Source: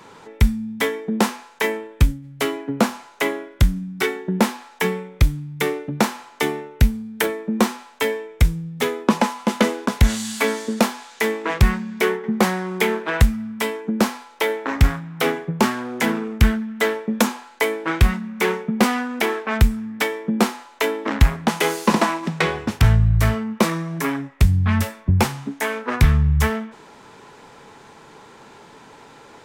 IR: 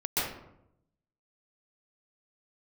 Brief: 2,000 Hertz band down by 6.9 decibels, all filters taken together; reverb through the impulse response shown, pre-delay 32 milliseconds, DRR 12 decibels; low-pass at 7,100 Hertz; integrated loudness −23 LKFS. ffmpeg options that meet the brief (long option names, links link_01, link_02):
-filter_complex "[0:a]lowpass=7100,equalizer=frequency=2000:width_type=o:gain=-8.5,asplit=2[link_01][link_02];[1:a]atrim=start_sample=2205,adelay=32[link_03];[link_02][link_03]afir=irnorm=-1:irlink=0,volume=-21.5dB[link_04];[link_01][link_04]amix=inputs=2:normalize=0,volume=-1dB"